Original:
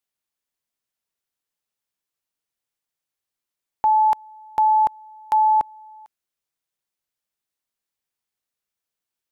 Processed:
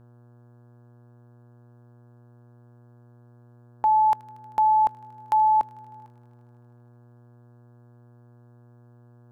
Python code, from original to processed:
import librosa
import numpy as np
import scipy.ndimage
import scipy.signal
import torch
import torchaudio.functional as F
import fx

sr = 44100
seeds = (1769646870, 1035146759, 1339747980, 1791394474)

y = fx.dmg_buzz(x, sr, base_hz=120.0, harmonics=14, level_db=-50.0, tilt_db=-8, odd_only=False)
y = fx.echo_wet_highpass(y, sr, ms=78, feedback_pct=83, hz=1600.0, wet_db=-19)
y = F.gain(torch.from_numpy(y), -2.5).numpy()